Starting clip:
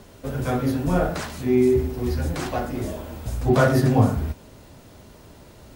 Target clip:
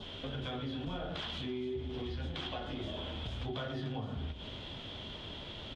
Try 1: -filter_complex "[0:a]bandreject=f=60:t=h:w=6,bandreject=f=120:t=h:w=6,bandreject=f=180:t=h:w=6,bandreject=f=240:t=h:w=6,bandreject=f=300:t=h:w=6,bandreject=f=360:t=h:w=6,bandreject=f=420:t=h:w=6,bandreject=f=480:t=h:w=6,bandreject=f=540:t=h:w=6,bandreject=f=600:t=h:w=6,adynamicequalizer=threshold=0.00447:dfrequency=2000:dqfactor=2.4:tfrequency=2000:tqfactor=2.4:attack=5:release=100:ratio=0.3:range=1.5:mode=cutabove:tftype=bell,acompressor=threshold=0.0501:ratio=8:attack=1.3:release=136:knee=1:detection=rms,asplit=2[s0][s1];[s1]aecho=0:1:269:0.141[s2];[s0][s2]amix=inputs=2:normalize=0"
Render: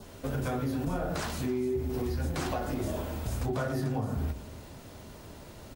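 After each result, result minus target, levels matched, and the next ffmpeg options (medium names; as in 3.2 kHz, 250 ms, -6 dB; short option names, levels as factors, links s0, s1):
4 kHz band -13.5 dB; compression: peak gain reduction -8 dB
-filter_complex "[0:a]bandreject=f=60:t=h:w=6,bandreject=f=120:t=h:w=6,bandreject=f=180:t=h:w=6,bandreject=f=240:t=h:w=6,bandreject=f=300:t=h:w=6,bandreject=f=360:t=h:w=6,bandreject=f=420:t=h:w=6,bandreject=f=480:t=h:w=6,bandreject=f=540:t=h:w=6,bandreject=f=600:t=h:w=6,adynamicequalizer=threshold=0.00447:dfrequency=2000:dqfactor=2.4:tfrequency=2000:tqfactor=2.4:attack=5:release=100:ratio=0.3:range=1.5:mode=cutabove:tftype=bell,lowpass=f=3300:t=q:w=12,acompressor=threshold=0.0501:ratio=8:attack=1.3:release=136:knee=1:detection=rms,asplit=2[s0][s1];[s1]aecho=0:1:269:0.141[s2];[s0][s2]amix=inputs=2:normalize=0"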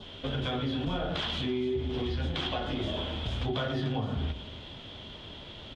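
compression: peak gain reduction -7.5 dB
-filter_complex "[0:a]bandreject=f=60:t=h:w=6,bandreject=f=120:t=h:w=6,bandreject=f=180:t=h:w=6,bandreject=f=240:t=h:w=6,bandreject=f=300:t=h:w=6,bandreject=f=360:t=h:w=6,bandreject=f=420:t=h:w=6,bandreject=f=480:t=h:w=6,bandreject=f=540:t=h:w=6,bandreject=f=600:t=h:w=6,adynamicequalizer=threshold=0.00447:dfrequency=2000:dqfactor=2.4:tfrequency=2000:tqfactor=2.4:attack=5:release=100:ratio=0.3:range=1.5:mode=cutabove:tftype=bell,lowpass=f=3300:t=q:w=12,acompressor=threshold=0.0188:ratio=8:attack=1.3:release=136:knee=1:detection=rms,asplit=2[s0][s1];[s1]aecho=0:1:269:0.141[s2];[s0][s2]amix=inputs=2:normalize=0"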